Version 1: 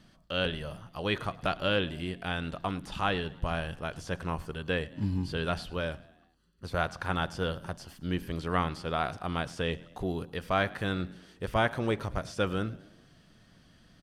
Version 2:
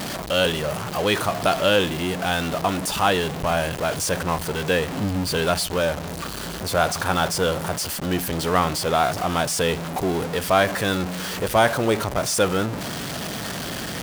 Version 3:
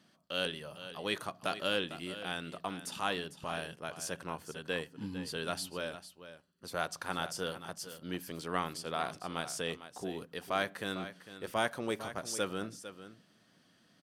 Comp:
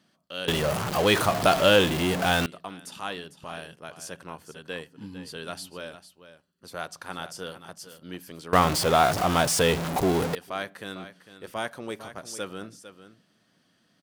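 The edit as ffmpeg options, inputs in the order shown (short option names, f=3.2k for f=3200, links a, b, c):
-filter_complex "[1:a]asplit=2[a][b];[2:a]asplit=3[c][d][e];[c]atrim=end=0.482[f];[a]atrim=start=0.478:end=2.462[g];[d]atrim=start=2.458:end=8.532[h];[b]atrim=start=8.528:end=10.352[i];[e]atrim=start=10.348[j];[f][g]acrossfade=d=0.004:c1=hsin:c2=hsin[k];[k][h]acrossfade=d=0.004:c1=hsin:c2=hsin[l];[l][i]acrossfade=d=0.004:c1=hsin:c2=hsin[m];[m][j]acrossfade=d=0.004:c1=hsin:c2=hsin"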